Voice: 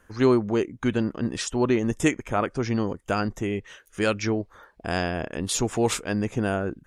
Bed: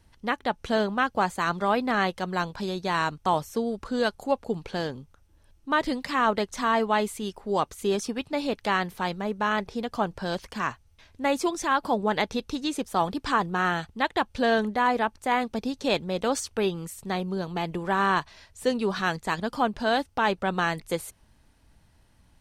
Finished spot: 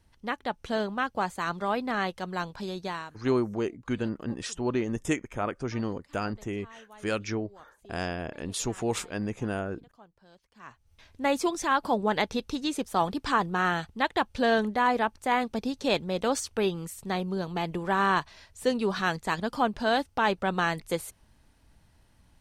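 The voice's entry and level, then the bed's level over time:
3.05 s, -6.0 dB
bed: 2.86 s -4.5 dB
3.28 s -27.5 dB
10.51 s -27.5 dB
10.93 s -1 dB

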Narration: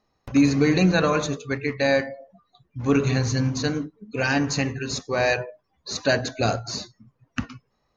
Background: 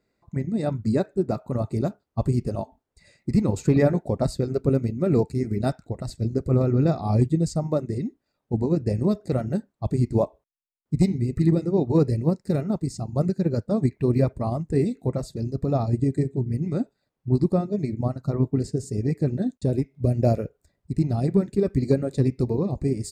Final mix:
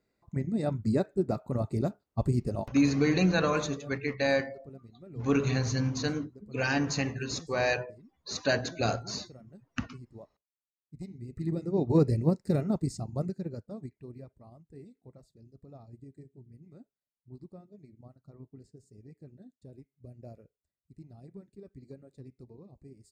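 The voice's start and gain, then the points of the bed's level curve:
2.40 s, -6.0 dB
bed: 2.65 s -4.5 dB
2.98 s -27 dB
10.82 s -27 dB
11.9 s -3.5 dB
12.88 s -3.5 dB
14.25 s -27 dB

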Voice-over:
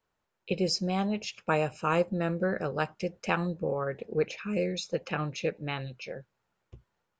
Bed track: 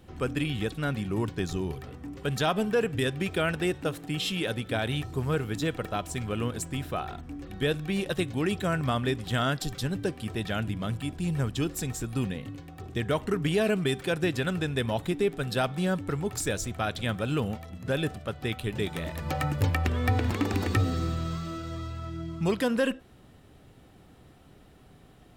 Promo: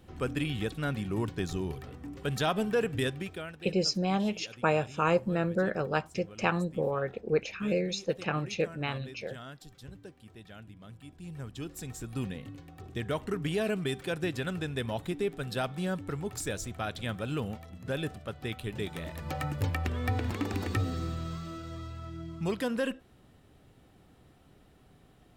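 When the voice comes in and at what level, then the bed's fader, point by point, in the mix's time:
3.15 s, +0.5 dB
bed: 3.06 s -2.5 dB
3.61 s -18.5 dB
10.81 s -18.5 dB
12.21 s -5 dB

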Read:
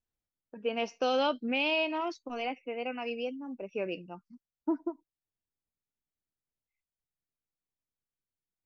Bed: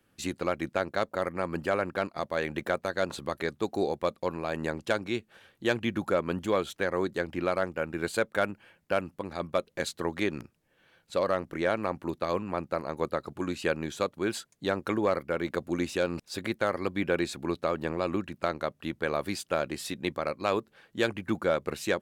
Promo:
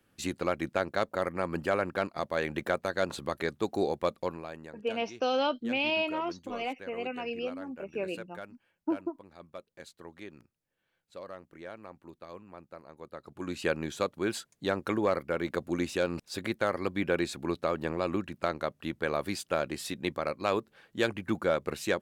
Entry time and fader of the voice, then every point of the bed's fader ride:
4.20 s, 0.0 dB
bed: 4.21 s -0.5 dB
4.71 s -16.5 dB
13.04 s -16.5 dB
13.59 s -1 dB

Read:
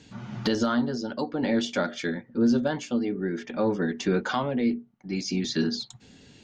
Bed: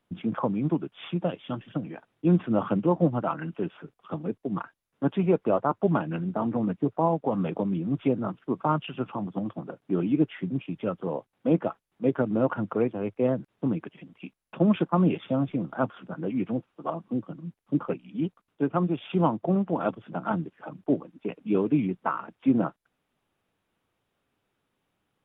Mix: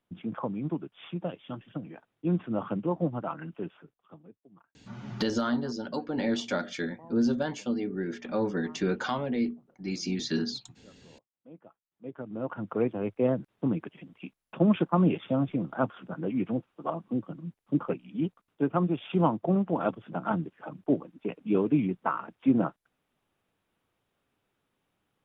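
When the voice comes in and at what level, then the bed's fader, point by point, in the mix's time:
4.75 s, -3.5 dB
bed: 3.7 s -6 dB
4.5 s -27.5 dB
11.55 s -27.5 dB
12.87 s -1 dB

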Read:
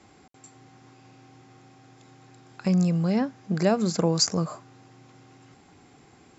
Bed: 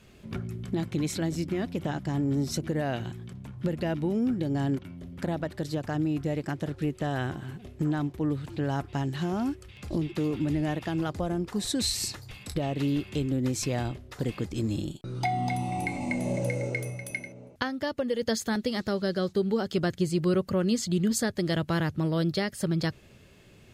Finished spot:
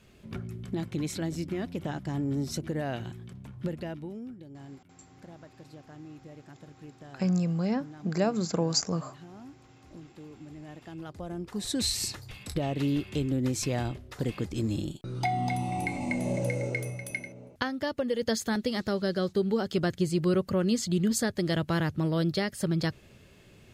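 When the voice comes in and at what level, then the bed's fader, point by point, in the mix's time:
4.55 s, -4.5 dB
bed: 3.63 s -3 dB
4.46 s -18.5 dB
10.53 s -18.5 dB
11.83 s -0.5 dB

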